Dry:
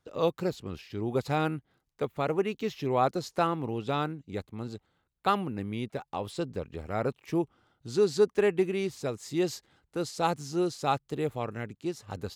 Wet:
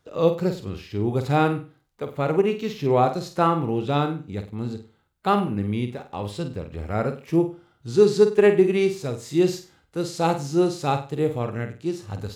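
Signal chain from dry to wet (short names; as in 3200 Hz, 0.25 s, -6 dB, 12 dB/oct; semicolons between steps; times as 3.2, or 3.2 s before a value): harmonic-percussive split harmonic +9 dB; flutter echo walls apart 8.4 m, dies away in 0.34 s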